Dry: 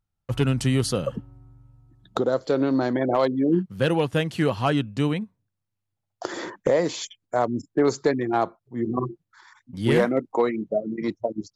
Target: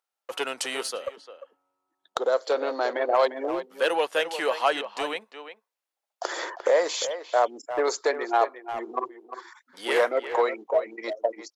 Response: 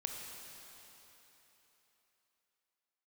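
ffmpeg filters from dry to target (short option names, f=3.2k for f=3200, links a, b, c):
-filter_complex "[0:a]asplit=2[a][b];[b]asoftclip=type=tanh:threshold=-20dB,volume=-7dB[c];[a][c]amix=inputs=2:normalize=0,highpass=f=490:w=0.5412,highpass=f=490:w=1.3066,asplit=2[d][e];[e]adelay=350,highpass=300,lowpass=3.4k,asoftclip=type=hard:threshold=-15.5dB,volume=-10dB[f];[d][f]amix=inputs=2:normalize=0,asplit=3[g][h][i];[g]afade=t=out:st=0.82:d=0.02[j];[h]aeval=exprs='0.501*(cos(1*acos(clip(val(0)/0.501,-1,1)))-cos(1*PI/2))+0.0631*(cos(3*acos(clip(val(0)/0.501,-1,1)))-cos(3*PI/2))+0.0141*(cos(7*acos(clip(val(0)/0.501,-1,1)))-cos(7*PI/2))':c=same,afade=t=in:st=0.82:d=0.02,afade=t=out:st=2.2:d=0.02[k];[i]afade=t=in:st=2.2:d=0.02[l];[j][k][l]amix=inputs=3:normalize=0"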